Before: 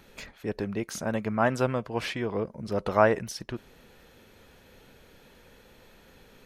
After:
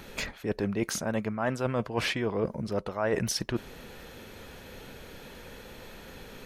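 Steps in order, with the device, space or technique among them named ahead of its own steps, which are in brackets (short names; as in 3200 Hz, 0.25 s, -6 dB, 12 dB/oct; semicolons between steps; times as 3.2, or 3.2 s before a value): compression on the reversed sound (reverse; compressor 16:1, threshold -34 dBFS, peak gain reduction 20.5 dB; reverse); gain +9 dB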